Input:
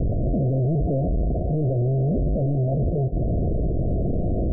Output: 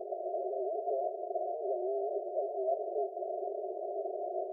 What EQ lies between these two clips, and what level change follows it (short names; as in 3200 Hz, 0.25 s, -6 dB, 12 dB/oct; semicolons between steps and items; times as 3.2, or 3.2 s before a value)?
brick-wall FIR high-pass 370 Hz; fixed phaser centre 490 Hz, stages 6; +2.0 dB